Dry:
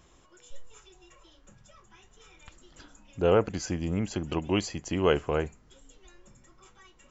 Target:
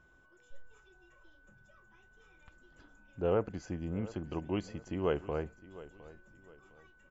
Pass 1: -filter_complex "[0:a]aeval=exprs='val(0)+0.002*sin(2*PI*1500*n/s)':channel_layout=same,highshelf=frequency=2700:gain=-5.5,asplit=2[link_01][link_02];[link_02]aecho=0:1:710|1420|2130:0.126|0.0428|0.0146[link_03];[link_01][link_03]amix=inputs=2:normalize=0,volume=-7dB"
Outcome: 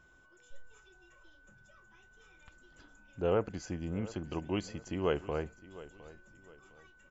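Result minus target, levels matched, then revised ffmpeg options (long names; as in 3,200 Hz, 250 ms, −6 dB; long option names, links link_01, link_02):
4,000 Hz band +4.5 dB
-filter_complex "[0:a]aeval=exprs='val(0)+0.002*sin(2*PI*1500*n/s)':channel_layout=same,highshelf=frequency=2700:gain=-13.5,asplit=2[link_01][link_02];[link_02]aecho=0:1:710|1420|2130:0.126|0.0428|0.0146[link_03];[link_01][link_03]amix=inputs=2:normalize=0,volume=-7dB"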